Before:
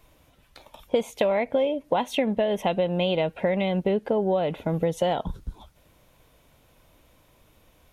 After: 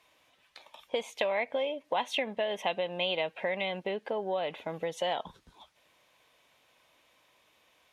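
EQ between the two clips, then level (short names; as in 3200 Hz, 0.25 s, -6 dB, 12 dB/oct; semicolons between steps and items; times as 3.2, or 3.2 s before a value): band-pass 2500 Hz, Q 0.53; notch 1400 Hz, Q 11; 0.0 dB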